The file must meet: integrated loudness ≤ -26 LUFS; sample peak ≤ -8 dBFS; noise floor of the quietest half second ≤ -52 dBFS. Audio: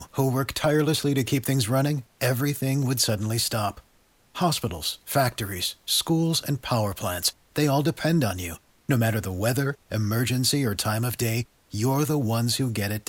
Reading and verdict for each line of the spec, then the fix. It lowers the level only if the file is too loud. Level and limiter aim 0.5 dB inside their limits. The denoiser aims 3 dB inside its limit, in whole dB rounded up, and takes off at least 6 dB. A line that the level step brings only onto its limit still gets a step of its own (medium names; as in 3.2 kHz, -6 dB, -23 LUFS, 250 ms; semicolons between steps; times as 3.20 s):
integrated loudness -25.0 LUFS: fail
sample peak -9.5 dBFS: pass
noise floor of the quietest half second -61 dBFS: pass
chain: trim -1.5 dB